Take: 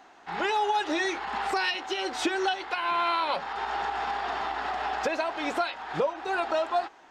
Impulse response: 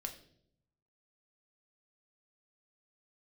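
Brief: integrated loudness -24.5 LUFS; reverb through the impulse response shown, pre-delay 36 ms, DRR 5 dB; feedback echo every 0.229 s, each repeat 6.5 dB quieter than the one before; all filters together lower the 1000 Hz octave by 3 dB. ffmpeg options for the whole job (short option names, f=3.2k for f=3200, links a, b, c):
-filter_complex "[0:a]equalizer=f=1k:t=o:g=-4,aecho=1:1:229|458|687|916|1145|1374:0.473|0.222|0.105|0.0491|0.0231|0.0109,asplit=2[a][b];[1:a]atrim=start_sample=2205,adelay=36[c];[b][c]afir=irnorm=-1:irlink=0,volume=-3dB[d];[a][d]amix=inputs=2:normalize=0,volume=3.5dB"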